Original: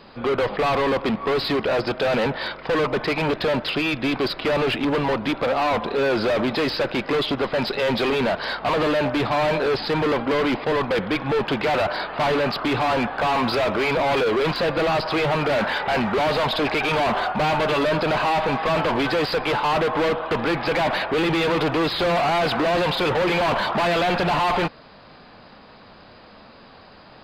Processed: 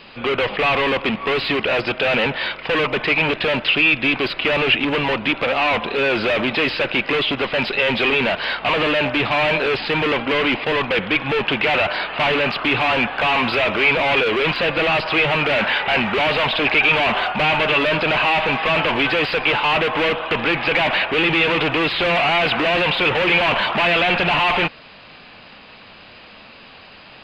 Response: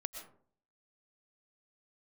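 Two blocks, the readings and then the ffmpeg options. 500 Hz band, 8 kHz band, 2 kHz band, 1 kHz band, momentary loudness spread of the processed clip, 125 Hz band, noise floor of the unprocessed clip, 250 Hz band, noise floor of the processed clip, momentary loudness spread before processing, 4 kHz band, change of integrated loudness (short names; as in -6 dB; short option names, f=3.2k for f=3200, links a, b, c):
+0.5 dB, n/a, +8.5 dB, +1.5 dB, 4 LU, 0.0 dB, -47 dBFS, 0.0 dB, -43 dBFS, 3 LU, +7.0 dB, +4.0 dB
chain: -filter_complex "[0:a]equalizer=f=2.7k:w=1.4:g=14,acrossover=split=3400[a][b];[b]acompressor=threshold=-34dB:ratio=4:attack=1:release=60[c];[a][c]amix=inputs=2:normalize=0"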